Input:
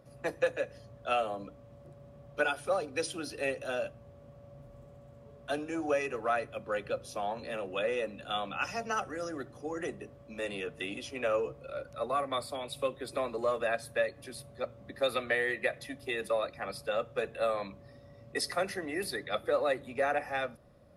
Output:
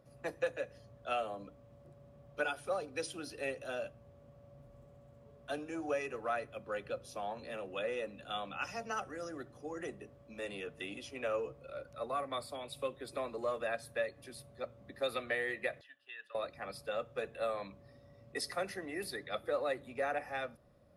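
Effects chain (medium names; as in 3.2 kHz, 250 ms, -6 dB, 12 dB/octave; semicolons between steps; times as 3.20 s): 15.81–16.35 s: two resonant band-passes 2.2 kHz, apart 0.74 oct; trim -5.5 dB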